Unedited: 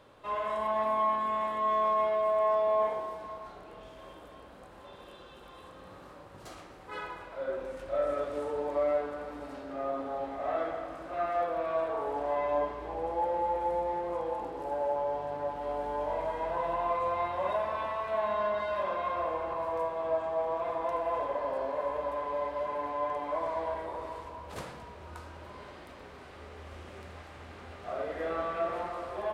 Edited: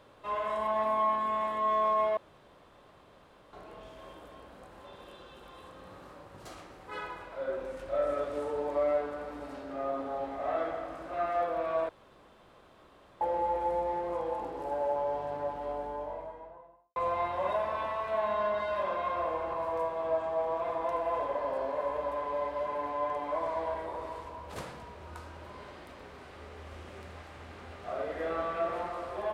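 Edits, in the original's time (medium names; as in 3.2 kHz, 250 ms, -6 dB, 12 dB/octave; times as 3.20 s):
2.17–3.53 s: room tone
11.89–13.21 s: room tone
15.29–16.96 s: studio fade out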